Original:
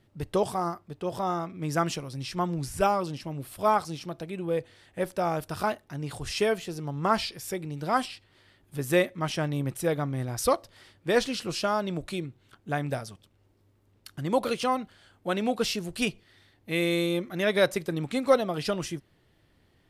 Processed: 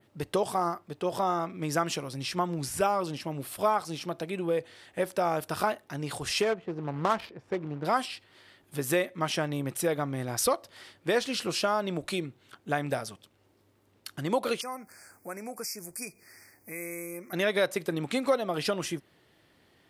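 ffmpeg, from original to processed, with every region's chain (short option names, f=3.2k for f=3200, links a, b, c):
-filter_complex "[0:a]asettb=1/sr,asplit=3[a][b][c];[a]atrim=end=6.424[d];[b]atrim=start=6.42:end=7.85,asetpts=PTS-STARTPTS,afade=t=in:d=0.004:c=qsin,afade=t=out:st=1.426:d=0.004:c=qsin,acrusher=bits=3:mode=log:mix=0:aa=0.000001,adynamicsmooth=sensitivity=2.5:basefreq=730[e];[c]atrim=start=7.846[f];[d][e]acrossfade=d=0.004:c1=hsin:c2=qsin[g];[g][f]acrossfade=d=0.004:c1=qsin:c2=hsin,asettb=1/sr,asplit=3[h][i][j];[h]atrim=end=14.614[k];[i]atrim=start=14.61:end=17.33,asetpts=PTS-STARTPTS,afade=t=in:d=0.004:c=qsin,afade=t=out:st=2.716:d=0.004:c=qsin,aemphasis=mode=production:type=75fm,acompressor=threshold=-50dB:ratio=2:attack=3.2:release=140:knee=1:detection=peak,asuperstop=centerf=3400:order=20:qfactor=1.6[l];[j]atrim=start=17.326[m];[k][l]acrossfade=d=0.004:c1=hsin:c2=qsin[n];[n][m]acrossfade=d=0.004:c1=qsin:c2=hsin,acompressor=threshold=-28dB:ratio=3,adynamicequalizer=threshold=0.00282:dfrequency=5200:dqfactor=0.87:tfrequency=5200:tqfactor=0.87:attack=5:release=100:ratio=0.375:range=2:mode=cutabove:tftype=bell,highpass=f=290:p=1,volume=5dB"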